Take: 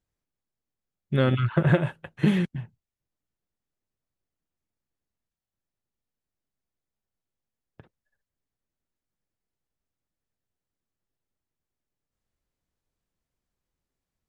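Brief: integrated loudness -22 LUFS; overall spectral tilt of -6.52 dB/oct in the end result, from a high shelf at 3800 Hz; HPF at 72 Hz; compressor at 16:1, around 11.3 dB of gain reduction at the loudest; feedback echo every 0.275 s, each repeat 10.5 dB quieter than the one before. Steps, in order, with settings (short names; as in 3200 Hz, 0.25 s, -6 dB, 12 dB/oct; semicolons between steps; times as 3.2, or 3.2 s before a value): HPF 72 Hz; high shelf 3800 Hz +4 dB; compressor 16:1, threshold -27 dBFS; feedback echo 0.275 s, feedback 30%, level -10.5 dB; gain +12 dB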